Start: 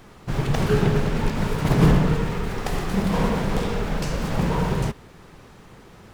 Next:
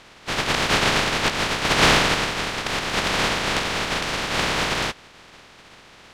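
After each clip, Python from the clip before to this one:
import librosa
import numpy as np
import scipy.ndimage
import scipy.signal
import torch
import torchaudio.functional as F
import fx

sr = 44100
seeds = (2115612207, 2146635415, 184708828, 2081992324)

y = fx.spec_flatten(x, sr, power=0.12)
y = scipy.signal.sosfilt(scipy.signal.butter(2, 3600.0, 'lowpass', fs=sr, output='sos'), y)
y = y * 10.0 ** (4.5 / 20.0)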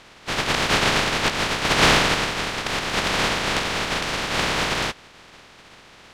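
y = x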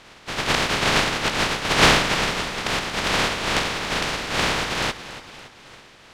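y = fx.tremolo_shape(x, sr, shape='triangle', hz=2.3, depth_pct=55)
y = fx.echo_feedback(y, sr, ms=283, feedback_pct=50, wet_db=-14)
y = y * 10.0 ** (2.0 / 20.0)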